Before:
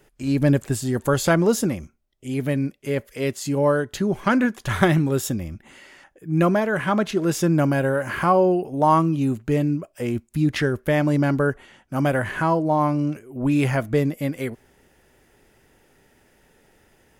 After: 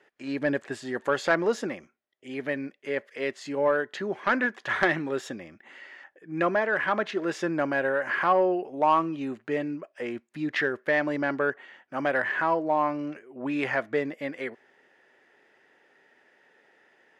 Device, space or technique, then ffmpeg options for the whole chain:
intercom: -af "highpass=390,lowpass=3.7k,equalizer=f=1.8k:t=o:w=0.34:g=7.5,asoftclip=type=tanh:threshold=-8.5dB,volume=-2.5dB"

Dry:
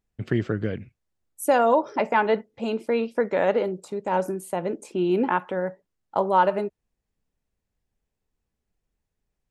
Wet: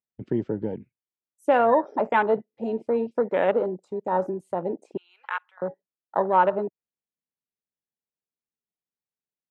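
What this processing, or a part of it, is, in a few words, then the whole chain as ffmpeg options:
over-cleaned archive recording: -filter_complex "[0:a]asettb=1/sr,asplit=3[a][b][c];[a]atrim=end=4.974[d];[b]atrim=start=4.97:end=5.62,asetpts=PTS-STARTPTS,afade=t=in:d=0.004:c=qsin,afade=t=out:st=0.646:d=0.004:c=qsin,highpass=f=1.2k:w=0.5412,highpass=f=1.2k:w=1.3066[e];[c]atrim=start=5.616[f];[d][e]acrossfade=d=0.004:c1=hsin:c2=qsin[g];[g][f]acrossfade=d=0.004:c1=qsin:c2=hsin,highpass=170,lowpass=7k,afwtdn=0.0282"

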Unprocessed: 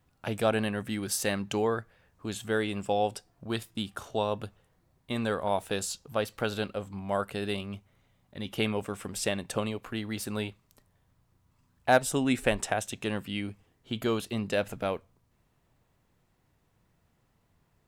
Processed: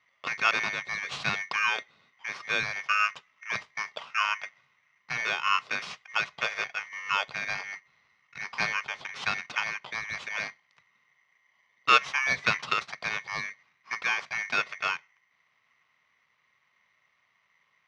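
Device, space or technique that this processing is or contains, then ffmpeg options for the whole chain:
ring modulator pedal into a guitar cabinet: -af "aeval=exprs='val(0)*sgn(sin(2*PI*2000*n/s))':c=same,highpass=94,equalizer=f=140:t=q:w=4:g=6,equalizer=f=310:t=q:w=4:g=-10,equalizer=f=1.1k:t=q:w=4:g=9,equalizer=f=1.7k:t=q:w=4:g=-5,lowpass=f=4.4k:w=0.5412,lowpass=f=4.4k:w=1.3066,volume=1.5dB"

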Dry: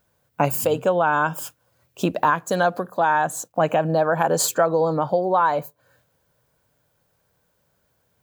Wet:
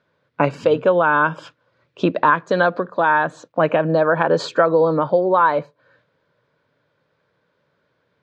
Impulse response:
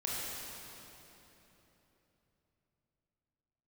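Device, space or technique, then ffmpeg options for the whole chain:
kitchen radio: -af "highpass=170,equalizer=f=210:t=q:w=4:g=-4,equalizer=f=760:t=q:w=4:g=-10,equalizer=f=2.9k:t=q:w=4:g=-5,lowpass=f=3.8k:w=0.5412,lowpass=f=3.8k:w=1.3066,volume=6dB"

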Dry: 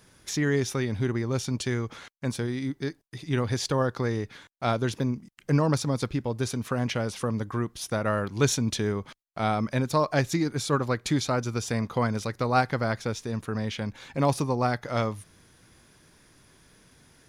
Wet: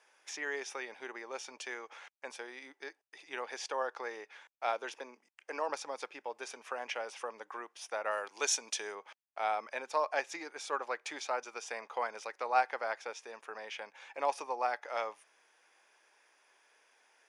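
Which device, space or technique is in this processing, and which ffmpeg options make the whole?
phone speaker on a table: -filter_complex "[0:a]asettb=1/sr,asplit=3[a][b][c];[a]atrim=end=4.824[d];[b]atrim=start=4.82:end=5.69,asetpts=PTS-STARTPTS,afade=t=in:d=0.004:c=qsin,afade=t=out:st=0.866:d=0.004:c=qsin,highpass=f=190:w=0.5412,highpass=f=190:w=1.3066[e];[c]atrim=start=5.686[f];[d][e]acrossfade=d=0.004:c1=hsin:c2=qsin[g];[g][f]acrossfade=d=0.004:c1=qsin:c2=hsin,asettb=1/sr,asplit=3[h][i][j];[h]atrim=end=8.114[k];[i]atrim=start=8.11:end=8.95,asetpts=PTS-STARTPTS,afade=t=in:d=0.004:c=qsin,afade=t=out:st=0.836:d=0.004:c=qsin,bass=f=250:g=-2,treble=f=4k:g=10[l];[j]atrim=start=8.946[m];[k][l]acrossfade=d=0.004:c1=hsin:c2=qsin[n];[n][m]acrossfade=d=0.004:c1=qsin:c2=hsin,highpass=f=480:w=0.5412,highpass=f=480:w=1.3066,equalizer=f=840:t=q:w=4:g=7,equalizer=f=1.7k:t=q:w=4:g=3,equalizer=f=2.5k:t=q:w=4:g=6,equalizer=f=4.1k:t=q:w=4:g=-8,equalizer=f=7.5k:t=q:w=4:g=-4,lowpass=f=8.7k:w=0.5412,lowpass=f=8.7k:w=1.3066,volume=-8dB"

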